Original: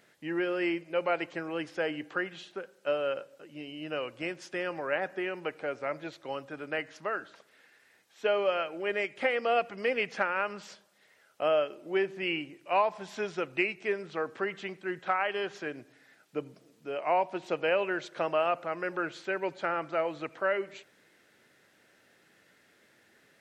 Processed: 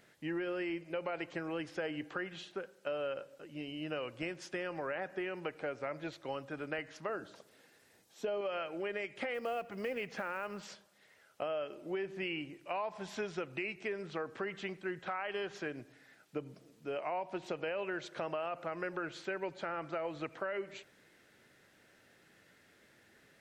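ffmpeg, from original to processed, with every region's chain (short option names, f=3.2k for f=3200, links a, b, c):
-filter_complex "[0:a]asettb=1/sr,asplit=3[a][b][c];[a]atrim=end=7.094[d];[b]atrim=start=7.09:end=8.41,asetpts=PTS-STARTPTS,afade=t=in:d=0.004:c=qsin,afade=t=out:st=1.316:d=0.004:c=qsin,equalizer=f=1.9k:t=o:w=1.9:g=-10.5,acontrast=33[e];[c]atrim=start=8.406[f];[d][e]acrossfade=d=0.004:c1=hsin:c2=qsin[g];[g][f]acrossfade=d=0.004:c1=qsin:c2=hsin,asettb=1/sr,asplit=3[h][i][j];[h]atrim=end=9.344[k];[i]atrim=start=9.34:end=10.63,asetpts=PTS-STARTPTS,afade=t=in:d=0.004:c=qsin,afade=t=out:st=1.286:d=0.004:c=qsin,lowpass=f=1.3k:p=1,aemphasis=mode=production:type=75kf,acrusher=bits=7:mode=log:mix=0:aa=0.000001[l];[j]atrim=start=10.626[m];[k][l]acrossfade=d=0.004:c1=hsin:c2=qsin[n];[n][m]acrossfade=d=0.004:c1=qsin:c2=hsin,lowshelf=f=100:g=11.5,alimiter=limit=-21.5dB:level=0:latency=1,acompressor=threshold=-33dB:ratio=4,volume=-1.5dB"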